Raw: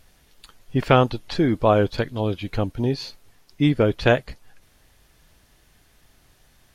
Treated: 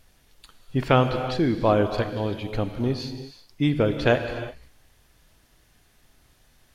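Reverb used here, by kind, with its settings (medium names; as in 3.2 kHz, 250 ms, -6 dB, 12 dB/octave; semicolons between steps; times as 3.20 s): gated-style reverb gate 390 ms flat, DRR 7.5 dB; trim -3 dB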